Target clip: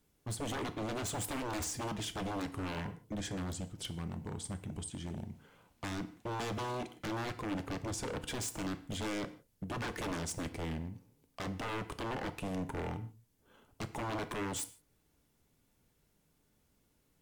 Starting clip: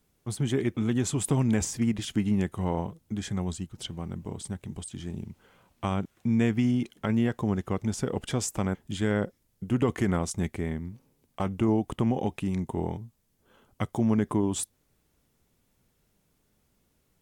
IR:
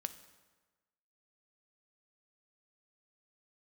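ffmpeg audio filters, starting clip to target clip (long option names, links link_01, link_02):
-filter_complex "[0:a]aeval=exprs='0.0335*(abs(mod(val(0)/0.0335+3,4)-2)-1)':channel_layout=same[link_01];[1:a]atrim=start_sample=2205,afade=type=out:start_time=0.33:duration=0.01,atrim=end_sample=14994,asetrate=70560,aresample=44100[link_02];[link_01][link_02]afir=irnorm=-1:irlink=0,volume=3dB"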